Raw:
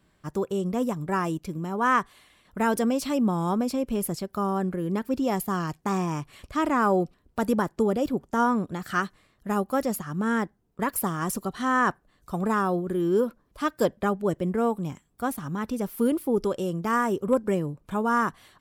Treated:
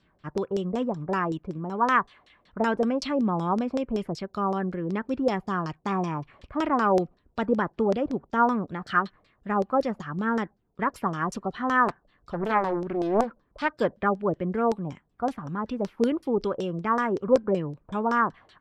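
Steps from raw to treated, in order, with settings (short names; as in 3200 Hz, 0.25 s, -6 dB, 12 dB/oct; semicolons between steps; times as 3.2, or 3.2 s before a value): LFO low-pass saw down 5.3 Hz 490–5600 Hz; 11.88–13.74 Doppler distortion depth 0.7 ms; gain -2 dB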